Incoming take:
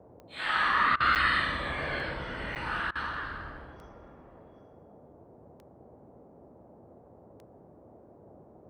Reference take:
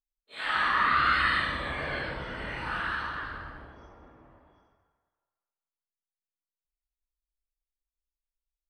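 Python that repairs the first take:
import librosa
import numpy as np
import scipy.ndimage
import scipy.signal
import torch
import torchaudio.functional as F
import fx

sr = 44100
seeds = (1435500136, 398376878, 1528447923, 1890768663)

y = fx.fix_declick_ar(x, sr, threshold=10.0)
y = fx.fix_interpolate(y, sr, at_s=(1.15, 2.55), length_ms=8.4)
y = fx.fix_interpolate(y, sr, at_s=(0.96, 2.91), length_ms=42.0)
y = fx.noise_reduce(y, sr, print_start_s=7.65, print_end_s=8.15, reduce_db=30.0)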